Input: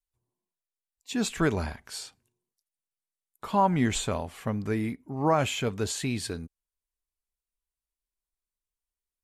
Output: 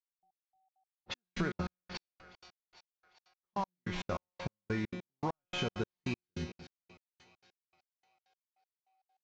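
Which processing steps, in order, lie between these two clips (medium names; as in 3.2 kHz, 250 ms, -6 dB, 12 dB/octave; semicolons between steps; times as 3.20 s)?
CVSD coder 32 kbps; in parallel at +2.5 dB: level held to a coarse grid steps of 10 dB; on the sum: dynamic bell 1.3 kHz, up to +5 dB, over -32 dBFS, Q 0.74; whistle 760 Hz -57 dBFS; bass shelf 340 Hz +4.5 dB; feedback comb 180 Hz, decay 0.67 s, harmonics all, mix 90%; compression, threshold -41 dBFS, peak gain reduction 17 dB; level-controlled noise filter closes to 510 Hz, open at -43 dBFS; on a send: two-band feedback delay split 600 Hz, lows 192 ms, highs 400 ms, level -15.5 dB; on the sum: trance gate "...x...xx.x" 198 bpm -60 dB; trim +10 dB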